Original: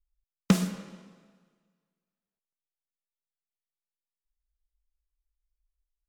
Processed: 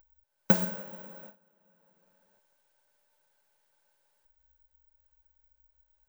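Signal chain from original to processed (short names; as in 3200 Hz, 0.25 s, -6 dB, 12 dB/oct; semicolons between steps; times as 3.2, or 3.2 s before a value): gate with hold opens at -52 dBFS; upward compressor, threshold -36 dBFS; small resonant body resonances 580/870/1500 Hz, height 17 dB, ringing for 35 ms; careless resampling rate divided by 2×, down filtered, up zero stuff; gain -6.5 dB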